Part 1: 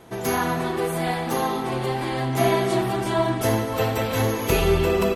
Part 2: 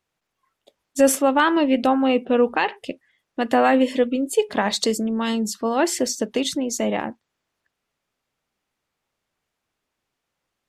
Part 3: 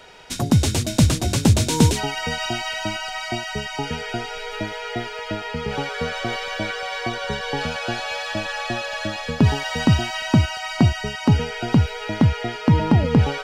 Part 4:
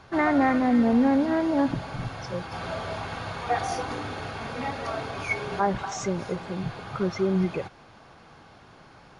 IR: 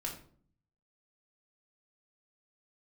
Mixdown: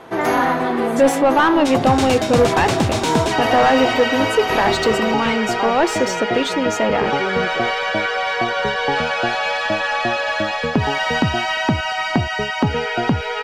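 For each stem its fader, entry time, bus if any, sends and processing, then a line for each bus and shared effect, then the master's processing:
+1.0 dB, 0.00 s, no send, auto duck -8 dB, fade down 1.50 s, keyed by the second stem
-1.0 dB, 0.00 s, no send, dry
+0.5 dB, 1.35 s, no send, compressor, threshold -15 dBFS, peak gain reduction 6 dB
-6.0 dB, 0.00 s, no send, dry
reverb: off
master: overdrive pedal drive 18 dB, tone 1400 Hz, clips at -3 dBFS

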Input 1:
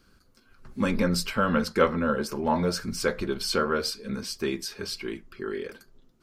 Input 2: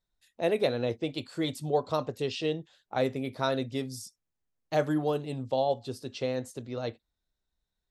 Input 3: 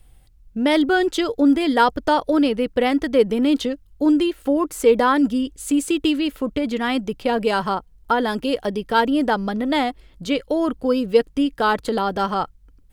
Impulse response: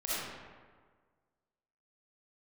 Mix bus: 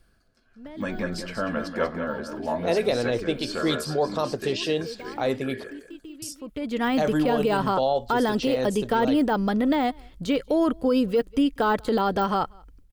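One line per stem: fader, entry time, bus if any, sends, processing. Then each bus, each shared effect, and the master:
-6.5 dB, 0.00 s, no bus, no send, echo send -9 dB, Bessel low-pass 8300 Hz; small resonant body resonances 660/1700 Hz, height 14 dB
-3.5 dB, 2.25 s, muted 5.64–6.22, bus A, no send, no echo send, tone controls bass -4 dB, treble +1 dB
-9.0 dB, 0.00 s, bus A, no send, echo send -20.5 dB, de-esser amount 85%; auto duck -23 dB, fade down 0.45 s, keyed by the first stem
bus A: 0.0 dB, AGC gain up to 10 dB; limiter -14 dBFS, peak gain reduction 9 dB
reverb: off
echo: echo 0.189 s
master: dry

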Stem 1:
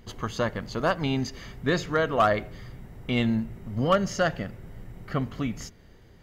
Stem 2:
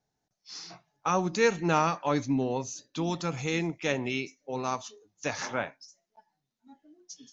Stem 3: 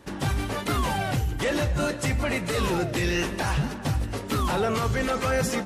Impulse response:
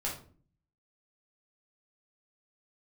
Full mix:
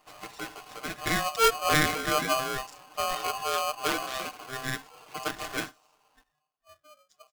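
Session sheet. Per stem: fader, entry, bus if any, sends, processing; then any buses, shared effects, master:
-15.0 dB, 0.00 s, no send, echo send -16.5 dB, dry
-3.0 dB, 0.00 s, no send, no echo send, Wiener smoothing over 25 samples
-14.5 dB, 0.00 s, no send, no echo send, compressor, threshold -27 dBFS, peak gain reduction 6.5 dB; tube stage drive 34 dB, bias 0.45; auto duck -6 dB, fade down 0.25 s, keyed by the second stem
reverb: off
echo: feedback echo 85 ms, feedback 60%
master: HPF 46 Hz; comb 6.5 ms, depth 86%; polarity switched at an audio rate 910 Hz

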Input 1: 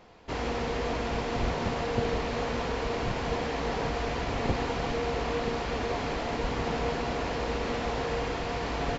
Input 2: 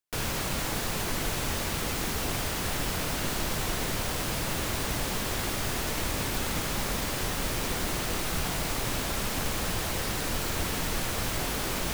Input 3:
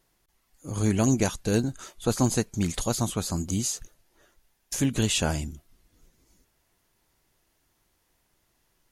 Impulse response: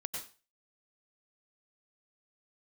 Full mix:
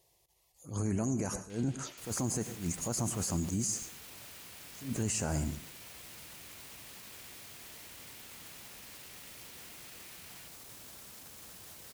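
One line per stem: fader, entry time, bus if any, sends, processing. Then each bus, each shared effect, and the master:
-16.5 dB, 1.50 s, no send, Chebyshev high-pass 2600 Hz, order 2; fast leveller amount 100%
-16.5 dB, 1.85 s, no send, high shelf 4300 Hz +11.5 dB; limiter -24.5 dBFS, peak gain reduction 12 dB
+1.0 dB, 0.00 s, send -11.5 dB, envelope phaser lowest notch 240 Hz, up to 3500 Hz, full sweep at -28 dBFS; limiter -16 dBFS, peak gain reduction 6 dB; attack slew limiter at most 170 dB/s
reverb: on, RT60 0.35 s, pre-delay 87 ms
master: HPF 69 Hz 12 dB/oct; limiter -24 dBFS, peak gain reduction 11.5 dB

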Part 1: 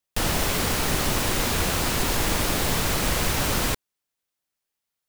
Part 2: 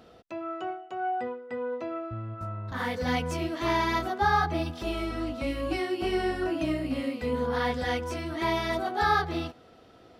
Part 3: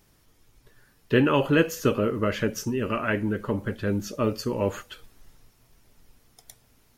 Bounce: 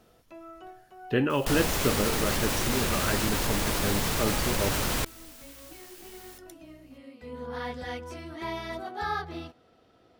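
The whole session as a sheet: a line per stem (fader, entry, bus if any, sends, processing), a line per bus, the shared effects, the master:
-6.0 dB, 1.30 s, no send, fast leveller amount 70%
-7.0 dB, 0.00 s, no send, auto duck -13 dB, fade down 1.70 s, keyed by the third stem
-5.0 dB, 0.00 s, no send, dry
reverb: off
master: dry

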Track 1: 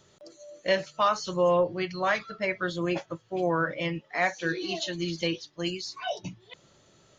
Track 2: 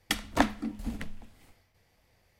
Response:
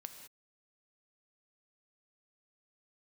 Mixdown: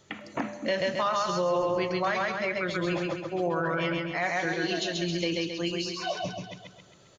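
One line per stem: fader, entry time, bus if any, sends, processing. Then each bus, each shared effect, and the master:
0.0 dB, 0.00 s, no send, echo send -3 dB, dry
-3.5 dB, 0.00 s, send -5 dB, no echo send, elliptic band-pass 120–2600 Hz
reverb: on, pre-delay 3 ms
echo: feedback echo 0.134 s, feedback 49%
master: limiter -18.5 dBFS, peak gain reduction 9 dB

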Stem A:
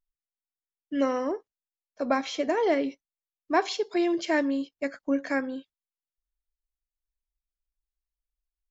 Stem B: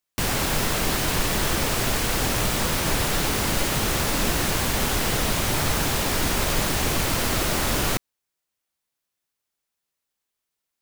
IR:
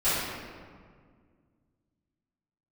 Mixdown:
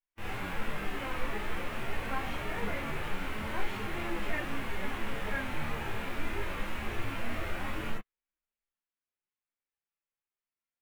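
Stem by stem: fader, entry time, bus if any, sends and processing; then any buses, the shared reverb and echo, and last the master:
-6.5 dB, 0.00 s, no send, tilt shelf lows -8.5 dB
-2.0 dB, 0.00 s, no send, ensemble effect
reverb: off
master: harmonic-percussive split percussive -17 dB; resonant high shelf 3500 Hz -13 dB, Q 1.5; chorus voices 4, 0.45 Hz, delay 22 ms, depth 4.6 ms

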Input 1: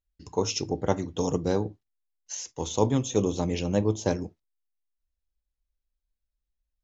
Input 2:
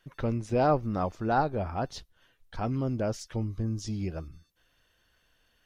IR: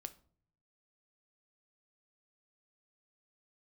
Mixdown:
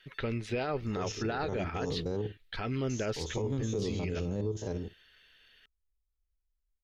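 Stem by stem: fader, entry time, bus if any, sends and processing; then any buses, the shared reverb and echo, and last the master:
-8.5 dB, 0.60 s, no send, stepped spectrum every 50 ms; low shelf 150 Hz +11 dB
-3.5 dB, 0.00 s, no send, band shelf 2700 Hz +14.5 dB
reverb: off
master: small resonant body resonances 420/1300 Hz, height 9 dB; limiter -24 dBFS, peak gain reduction 10.5 dB

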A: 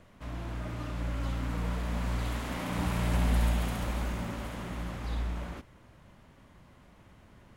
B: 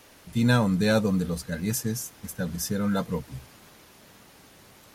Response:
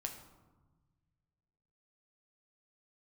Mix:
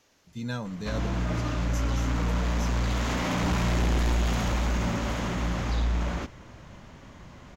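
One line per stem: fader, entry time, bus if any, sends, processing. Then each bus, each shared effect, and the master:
-1.5 dB, 0.65 s, no send, sine folder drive 7 dB, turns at -16.5 dBFS
-12.0 dB, 0.00 s, no send, dry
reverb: off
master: resonant high shelf 7800 Hz -6 dB, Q 3; limiter -20 dBFS, peak gain reduction 3.5 dB

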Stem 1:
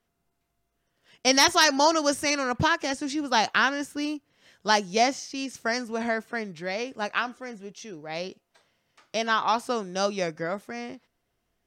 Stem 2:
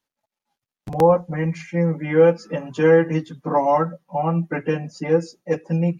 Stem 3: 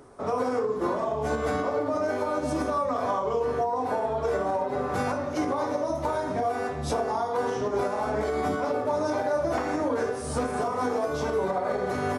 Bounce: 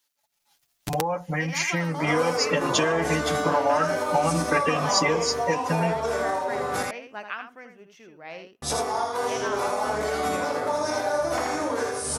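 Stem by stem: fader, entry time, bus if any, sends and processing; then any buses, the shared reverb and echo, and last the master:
-12.5 dB, 0.15 s, bus A, no send, echo send -7.5 dB, band shelf 5800 Hz -12.5 dB; compressor 3:1, threshold -25 dBFS, peak gain reduction 7 dB
0.0 dB, 0.00 s, bus A, no send, no echo send, high shelf 2500 Hz +12 dB; comb 6.9 ms, depth 49%; compressor, threshold -21 dBFS, peak gain reduction 11.5 dB
-7.0 dB, 1.80 s, muted 6.83–8.62, no bus, no send, echo send -4 dB, high shelf 4400 Hz +9.5 dB
bus A: 0.0 dB, compressor, threshold -25 dBFS, peak gain reduction 7 dB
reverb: off
echo: echo 81 ms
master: low shelf 490 Hz -9.5 dB; AGC gain up to 9.5 dB

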